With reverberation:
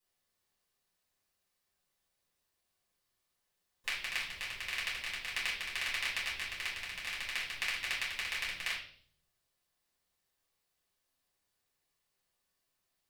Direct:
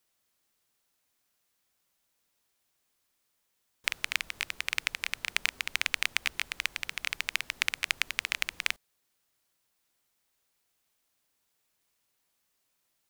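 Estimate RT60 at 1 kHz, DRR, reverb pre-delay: 0.45 s, -8.0 dB, 4 ms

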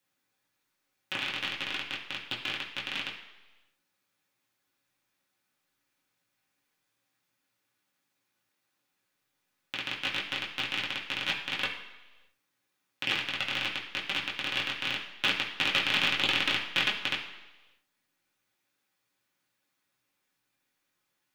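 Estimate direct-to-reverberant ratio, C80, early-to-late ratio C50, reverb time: -5.5 dB, 9.5 dB, 7.0 dB, 1.2 s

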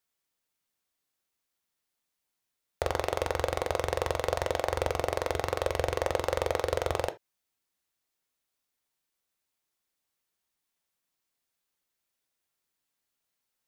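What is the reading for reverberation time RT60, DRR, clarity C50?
no single decay rate, 8.0 dB, 18.0 dB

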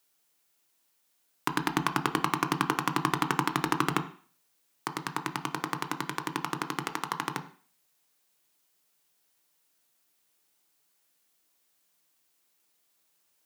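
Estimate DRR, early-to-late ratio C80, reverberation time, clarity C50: 7.5 dB, 16.0 dB, 0.45 s, 13.0 dB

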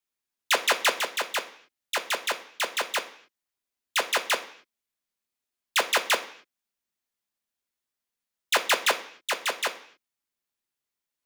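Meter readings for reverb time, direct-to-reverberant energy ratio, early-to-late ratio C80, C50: no single decay rate, 5.0 dB, 16.5 dB, 13.5 dB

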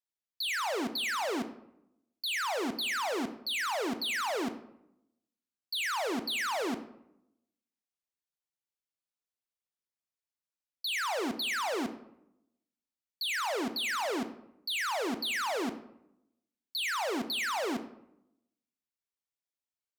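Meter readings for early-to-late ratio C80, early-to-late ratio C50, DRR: 14.5 dB, 12.0 dB, 9.0 dB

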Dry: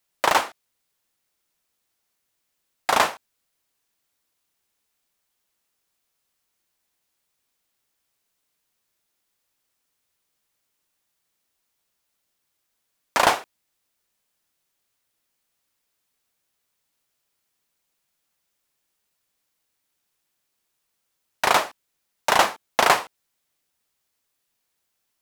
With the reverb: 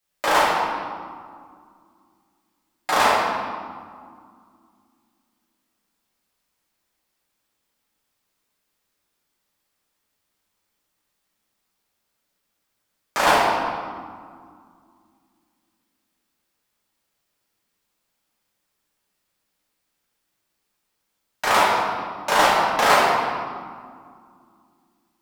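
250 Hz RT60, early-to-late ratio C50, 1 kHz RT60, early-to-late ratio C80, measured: 3.2 s, -2.0 dB, 2.1 s, 0.5 dB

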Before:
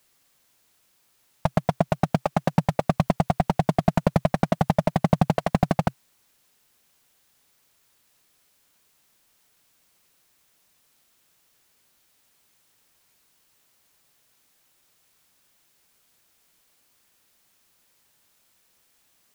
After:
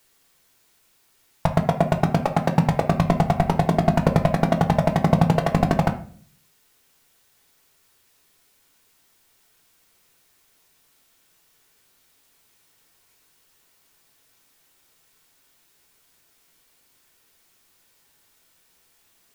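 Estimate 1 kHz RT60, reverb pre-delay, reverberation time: 0.40 s, 3 ms, 0.50 s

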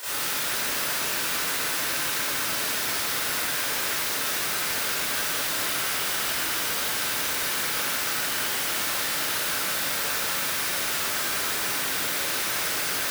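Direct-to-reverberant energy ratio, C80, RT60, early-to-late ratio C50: -15.5 dB, -3.0 dB, 2.1 s, -7.0 dB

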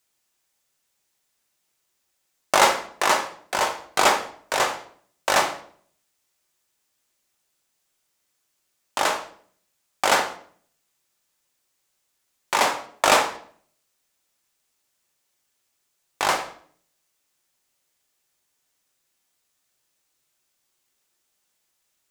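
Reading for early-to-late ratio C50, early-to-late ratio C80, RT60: 10.5 dB, 15.0 dB, 0.55 s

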